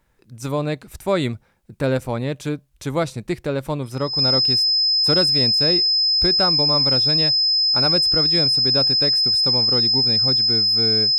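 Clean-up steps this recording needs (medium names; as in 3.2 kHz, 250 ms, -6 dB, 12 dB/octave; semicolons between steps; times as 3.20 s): band-stop 5.1 kHz, Q 30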